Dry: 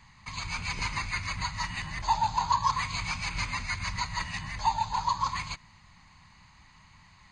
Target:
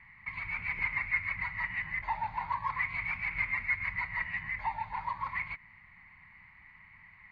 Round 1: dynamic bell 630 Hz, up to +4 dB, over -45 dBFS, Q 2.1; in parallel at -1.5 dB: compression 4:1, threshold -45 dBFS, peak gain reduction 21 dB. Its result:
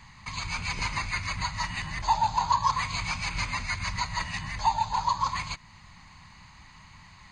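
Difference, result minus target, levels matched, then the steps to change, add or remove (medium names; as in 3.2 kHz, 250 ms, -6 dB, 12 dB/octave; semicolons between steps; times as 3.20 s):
2 kHz band -6.0 dB
add after dynamic bell: four-pole ladder low-pass 2.2 kHz, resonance 80%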